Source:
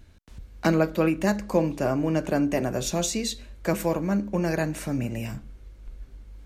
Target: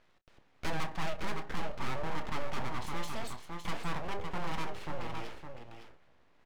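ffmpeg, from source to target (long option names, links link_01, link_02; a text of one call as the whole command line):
ffmpeg -i in.wav -filter_complex "[0:a]highpass=320,lowpass=2300,aeval=exprs='abs(val(0))':channel_layout=same,aecho=1:1:560:0.335,asoftclip=type=tanh:threshold=-24dB,asplit=2[link_01][link_02];[link_02]adelay=29,volume=-13.5dB[link_03];[link_01][link_03]amix=inputs=2:normalize=0,volume=-1dB" out.wav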